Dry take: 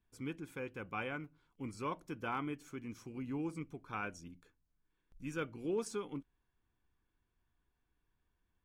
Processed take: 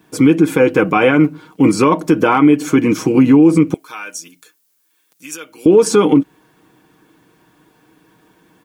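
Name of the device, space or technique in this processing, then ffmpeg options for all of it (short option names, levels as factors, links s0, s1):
mastering chain: -filter_complex "[0:a]highpass=280,equalizer=f=200:t=o:w=1.7:g=2.5,aecho=1:1:6.4:0.57,acompressor=threshold=0.01:ratio=2.5,tiltshelf=f=670:g=5,alimiter=level_in=56.2:limit=0.891:release=50:level=0:latency=1,asettb=1/sr,asplit=3[s0][s1][s2];[s0]atrim=end=3.744[s3];[s1]atrim=start=3.74:end=5.66,asetpts=PTS-STARTPTS,afade=t=in:d=0.004:c=qsin,afade=t=out:st=1.916:d=0.004:c=qsin,aderivative[s4];[s2]atrim=start=5.656[s5];[s3][s4]acrossfade=d=0.004:c1=hsin:c2=qsin[s6];[s6][s5]acrossfade=d=0.004:c1=qsin:c2=hsin,volume=0.891"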